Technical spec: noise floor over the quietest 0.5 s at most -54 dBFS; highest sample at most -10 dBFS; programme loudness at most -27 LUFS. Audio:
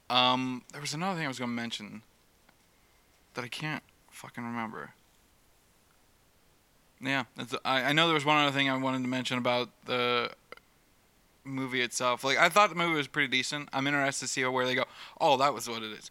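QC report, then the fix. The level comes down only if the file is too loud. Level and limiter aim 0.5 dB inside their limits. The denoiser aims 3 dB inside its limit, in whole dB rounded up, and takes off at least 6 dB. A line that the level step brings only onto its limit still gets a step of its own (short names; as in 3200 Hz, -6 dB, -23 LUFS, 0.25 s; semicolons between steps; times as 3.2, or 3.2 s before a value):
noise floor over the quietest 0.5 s -65 dBFS: OK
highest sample -6.5 dBFS: fail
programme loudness -29.0 LUFS: OK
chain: limiter -10.5 dBFS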